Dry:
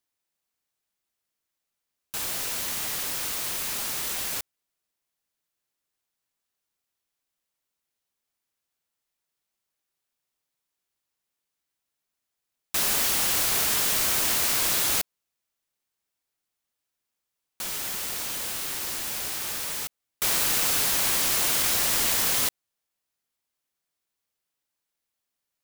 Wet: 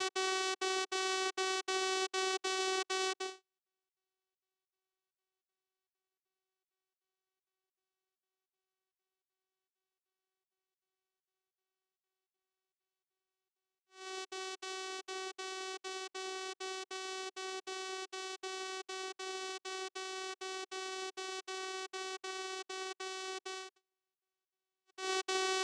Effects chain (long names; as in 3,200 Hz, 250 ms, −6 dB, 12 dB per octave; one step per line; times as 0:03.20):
extreme stretch with random phases 4.2×, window 0.10 s, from 0:14.25
gate pattern "x.xxxxx.xx" 197 BPM −60 dB
channel vocoder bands 4, saw 378 Hz
level −6 dB